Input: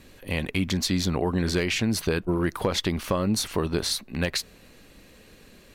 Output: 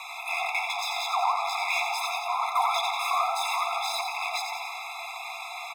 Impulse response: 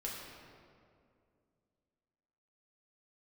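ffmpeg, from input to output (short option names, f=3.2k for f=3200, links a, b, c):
-filter_complex "[0:a]asplit=2[a][b];[b]highpass=f=720:p=1,volume=35dB,asoftclip=type=tanh:threshold=-12.5dB[c];[a][c]amix=inputs=2:normalize=0,lowpass=f=1.4k:p=1,volume=-6dB,asplit=9[d][e][f][g][h][i][j][k][l];[e]adelay=89,afreqshift=120,volume=-6dB[m];[f]adelay=178,afreqshift=240,volume=-10.6dB[n];[g]adelay=267,afreqshift=360,volume=-15.2dB[o];[h]adelay=356,afreqshift=480,volume=-19.7dB[p];[i]adelay=445,afreqshift=600,volume=-24.3dB[q];[j]adelay=534,afreqshift=720,volume=-28.9dB[r];[k]adelay=623,afreqshift=840,volume=-33.5dB[s];[l]adelay=712,afreqshift=960,volume=-38.1dB[t];[d][m][n][o][p][q][r][s][t]amix=inputs=9:normalize=0,asplit=2[u][v];[1:a]atrim=start_sample=2205,asetrate=30429,aresample=44100[w];[v][w]afir=irnorm=-1:irlink=0,volume=-12.5dB[x];[u][x]amix=inputs=2:normalize=0,afftfilt=real='re*eq(mod(floor(b*sr/1024/680),2),1)':imag='im*eq(mod(floor(b*sr/1024/680),2),1)':win_size=1024:overlap=0.75,volume=-2dB"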